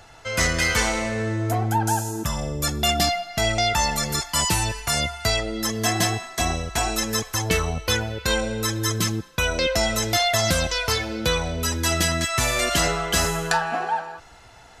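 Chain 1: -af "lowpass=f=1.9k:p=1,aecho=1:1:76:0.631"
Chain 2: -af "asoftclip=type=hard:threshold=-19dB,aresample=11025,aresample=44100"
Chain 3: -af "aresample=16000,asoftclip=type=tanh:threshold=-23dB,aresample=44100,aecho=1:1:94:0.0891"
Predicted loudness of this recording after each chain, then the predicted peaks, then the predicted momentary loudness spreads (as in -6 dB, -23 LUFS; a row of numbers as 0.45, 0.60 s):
-24.5, -25.0, -27.5 LUFS; -8.0, -16.0, -18.5 dBFS; 4, 5, 4 LU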